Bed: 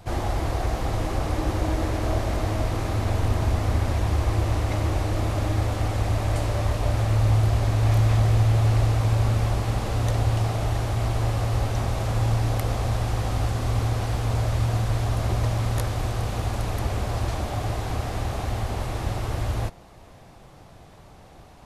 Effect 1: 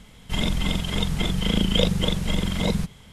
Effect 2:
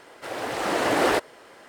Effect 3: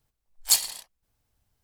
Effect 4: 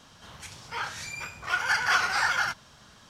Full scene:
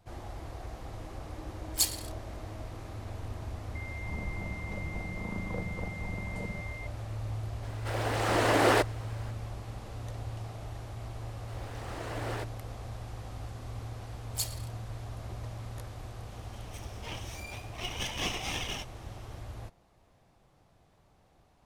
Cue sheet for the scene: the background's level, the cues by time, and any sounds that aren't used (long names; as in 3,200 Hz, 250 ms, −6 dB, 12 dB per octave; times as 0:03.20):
bed −16.5 dB
0:01.29: mix in 3 −7 dB
0:03.75: mix in 1 −16 dB + switching amplifier with a slow clock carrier 2,100 Hz
0:07.63: mix in 2 −2.5 dB
0:11.25: mix in 2 −17 dB
0:13.88: mix in 3 −13.5 dB
0:16.31: mix in 4 −6.5 dB + lower of the sound and its delayed copy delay 0.33 ms